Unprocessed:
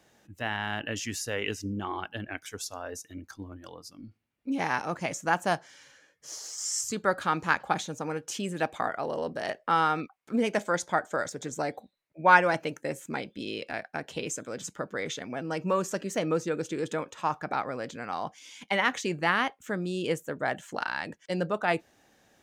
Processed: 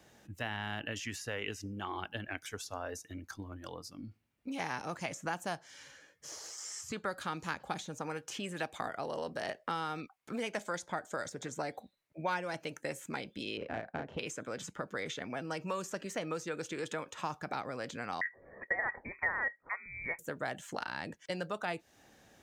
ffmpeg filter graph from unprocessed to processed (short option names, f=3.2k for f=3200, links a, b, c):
-filter_complex "[0:a]asettb=1/sr,asplit=3[a][b][c];[a]atrim=end=13.574[d];[b]atrim=start=13.57:end=14.19,asetpts=PTS-STARTPTS,afade=t=in:d=0.004:c=qsin,afade=t=out:st=0.616:d=0.004:c=qsin,tiltshelf=f=740:g=5,adynamicsmooth=sensitivity=1:basefreq=1.6k,asplit=2[e][f];[f]adelay=36,volume=-3dB[g];[e][g]amix=inputs=2:normalize=0,atrim=end_sample=27342[h];[c]atrim=start=14.186[i];[d][h]acrossfade=d=0.004:c1=hsin:c2=qsin[j];[j][i]acrossfade=d=0.004:c1=qsin:c2=hsin,asettb=1/sr,asplit=3[k][l][m];[k]atrim=end=18.214[n];[l]atrim=start=18.21:end=20.19,asetpts=PTS-STARTPTS,afade=t=in:d=0.004:c=qsin,afade=t=out:st=1.976:d=0.004:c=qsin,highpass=f=810:t=q:w=8.6,lowpass=f=2.3k:t=q:w=0.5098,lowpass=f=2.3k:t=q:w=0.6013,lowpass=f=2.3k:t=q:w=0.9,lowpass=f=2.3k:t=q:w=2.563,afreqshift=-2700[o];[m]atrim=start=20.186[p];[n][o]acrossfade=d=0.004:c1=hsin:c2=qsin[q];[q][p]acrossfade=d=0.004:c1=qsin:c2=hsin,equalizer=f=67:t=o:w=2.7:g=4,acrossover=split=650|3100[r][s][t];[r]acompressor=threshold=-43dB:ratio=4[u];[s]acompressor=threshold=-40dB:ratio=4[v];[t]acompressor=threshold=-48dB:ratio=4[w];[u][v][w]amix=inputs=3:normalize=0,volume=1dB"